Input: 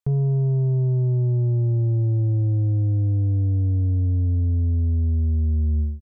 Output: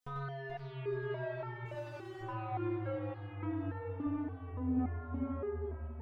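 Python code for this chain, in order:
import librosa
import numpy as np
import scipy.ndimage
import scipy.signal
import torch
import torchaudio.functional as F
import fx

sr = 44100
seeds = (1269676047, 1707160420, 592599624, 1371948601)

p1 = fx.fade_out_tail(x, sr, length_s=0.82)
p2 = fx.peak_eq(p1, sr, hz=390.0, db=-13.5, octaves=2.6, at=(4.06, 4.79))
p3 = fx.over_compress(p2, sr, threshold_db=-27.0, ratio=-1.0)
p4 = p2 + F.gain(torch.from_numpy(p3), -1.5).numpy()
p5 = 10.0 ** (-29.5 / 20.0) * np.tanh(p4 / 10.0 ** (-29.5 / 20.0))
p6 = fx.echo_feedback(p5, sr, ms=432, feedback_pct=51, wet_db=-5)
p7 = fx.overload_stage(p6, sr, gain_db=34.0, at=(1.65, 2.21))
p8 = fx.doubler(p7, sr, ms=49.0, db=-14.0)
p9 = p8 + 10.0 ** (-3.5 / 20.0) * np.pad(p8, (int(94 * sr / 1000.0), 0))[:len(p8)]
p10 = fx.resonator_held(p9, sr, hz=3.5, low_hz=250.0, high_hz=450.0)
y = F.gain(torch.from_numpy(p10), 11.0).numpy()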